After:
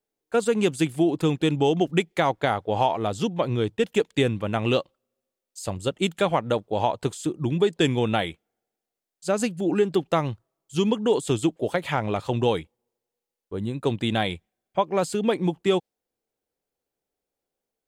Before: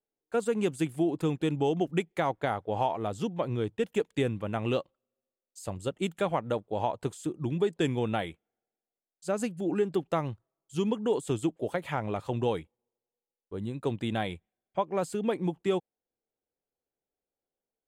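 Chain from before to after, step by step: dynamic bell 4.3 kHz, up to +6 dB, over -53 dBFS, Q 0.84; trim +6 dB

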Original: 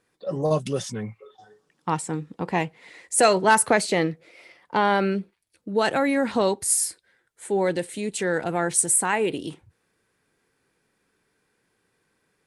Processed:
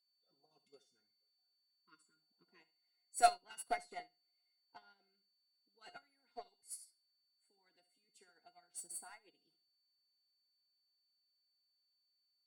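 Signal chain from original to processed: spectral replace 1.70–2.60 s, 470–990 Hz both; Bessel high-pass 180 Hz; harmonic-percussive split harmonic -16 dB; comb of notches 580 Hz; in parallel at -6 dB: wavefolder -20.5 dBFS; on the sum: whistle 4.5 kHz -34 dBFS; feedback comb 710 Hz, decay 0.28 s, mix 90%; flutter echo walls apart 12 m, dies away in 0.35 s; upward expansion 2.5:1, over -48 dBFS; trim +4 dB

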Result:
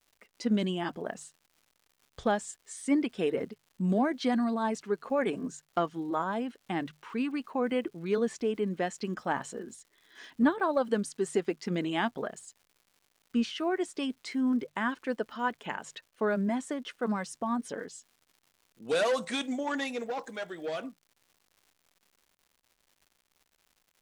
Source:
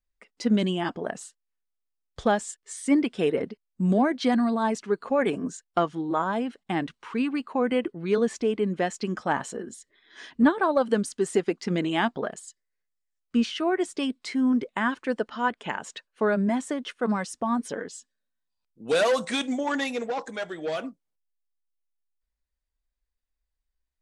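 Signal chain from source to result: crackle 240 per s -47 dBFS; hum notches 50/100/150 Hz; trim -5 dB

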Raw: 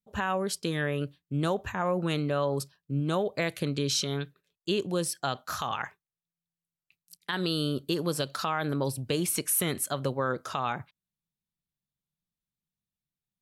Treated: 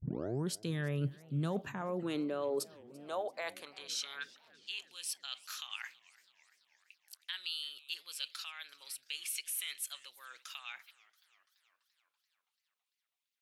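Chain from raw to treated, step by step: tape start-up on the opening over 0.51 s; reverse; compression, threshold -35 dBFS, peak gain reduction 11.5 dB; reverse; high-pass sweep 130 Hz -> 2.6 kHz, 1.19–4.88 s; modulated delay 333 ms, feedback 63%, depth 205 cents, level -22.5 dB; trim -1 dB

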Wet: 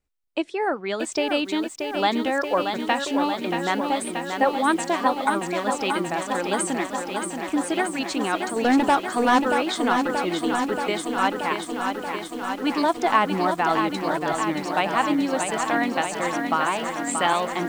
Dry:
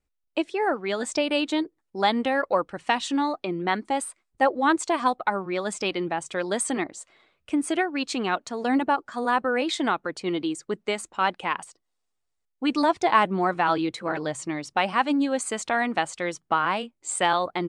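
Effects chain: 8.56–9.40 s: waveshaping leveller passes 2; bit-crushed delay 630 ms, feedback 80%, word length 8-bit, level -6 dB

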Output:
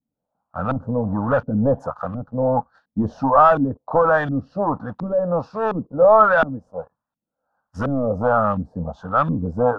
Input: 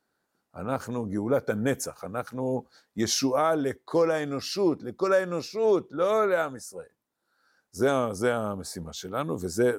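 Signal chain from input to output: dynamic bell 2.1 kHz, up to +4 dB, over -41 dBFS, Q 1.2; waveshaping leveller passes 2; static phaser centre 900 Hz, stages 4; LFO low-pass saw up 1.4 Hz 220–2500 Hz; trim +5.5 dB

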